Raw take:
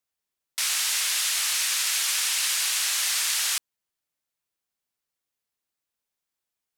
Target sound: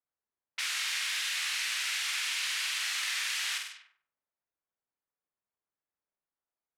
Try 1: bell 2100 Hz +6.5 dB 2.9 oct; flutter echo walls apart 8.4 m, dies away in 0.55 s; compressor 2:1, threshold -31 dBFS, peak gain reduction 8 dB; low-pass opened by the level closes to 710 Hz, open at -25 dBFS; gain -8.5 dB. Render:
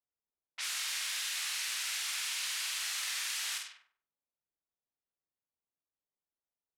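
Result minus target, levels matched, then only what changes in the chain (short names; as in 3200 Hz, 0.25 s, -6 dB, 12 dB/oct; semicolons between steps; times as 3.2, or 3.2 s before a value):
2000 Hz band -3.0 dB
change: bell 2100 Hz +16.5 dB 2.9 oct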